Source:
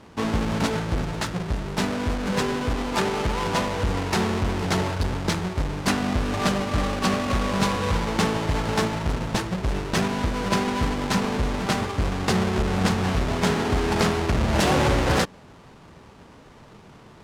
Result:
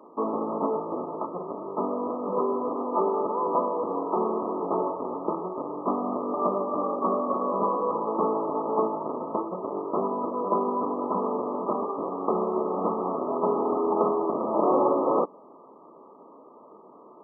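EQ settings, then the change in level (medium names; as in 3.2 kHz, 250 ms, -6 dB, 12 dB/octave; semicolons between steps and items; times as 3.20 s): high-pass 290 Hz 24 dB/octave; brick-wall FIR low-pass 1.3 kHz; band-stop 770 Hz, Q 12; +2.0 dB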